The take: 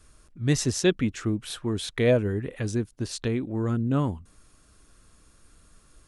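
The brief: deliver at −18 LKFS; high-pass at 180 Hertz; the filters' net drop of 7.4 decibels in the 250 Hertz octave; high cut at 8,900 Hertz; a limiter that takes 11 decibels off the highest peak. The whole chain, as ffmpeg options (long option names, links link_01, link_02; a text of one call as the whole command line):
ffmpeg -i in.wav -af "highpass=180,lowpass=8900,equalizer=frequency=250:width_type=o:gain=-8.5,volume=17dB,alimiter=limit=-5.5dB:level=0:latency=1" out.wav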